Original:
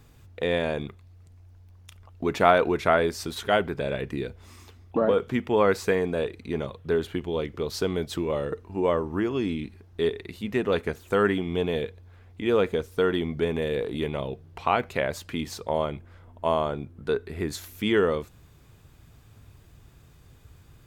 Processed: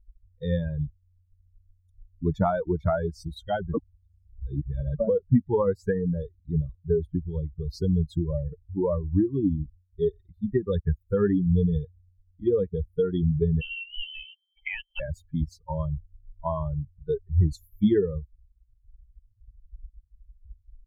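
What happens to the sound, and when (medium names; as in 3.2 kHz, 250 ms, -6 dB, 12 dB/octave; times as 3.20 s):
3.74–5.00 s: reverse
13.61–15.00 s: frequency inversion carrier 3.2 kHz
whole clip: expander on every frequency bin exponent 3; compression 3:1, threshold -32 dBFS; tilt EQ -4.5 dB/octave; trim +5 dB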